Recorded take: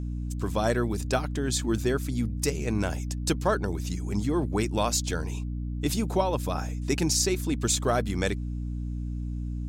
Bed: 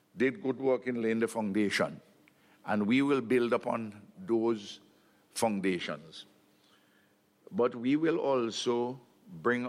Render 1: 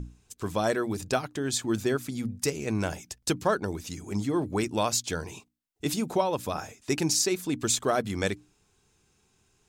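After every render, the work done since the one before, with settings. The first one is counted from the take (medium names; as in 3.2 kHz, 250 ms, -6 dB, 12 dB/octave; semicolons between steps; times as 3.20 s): hum notches 60/120/180/240/300 Hz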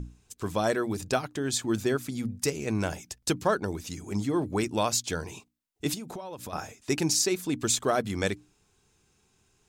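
5.94–6.53 s: compression 10:1, threshold -35 dBFS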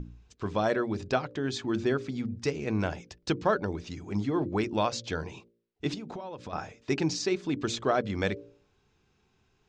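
Bessel low-pass 3.7 kHz, order 6; de-hum 57.6 Hz, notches 10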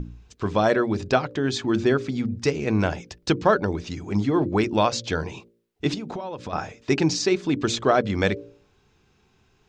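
trim +7 dB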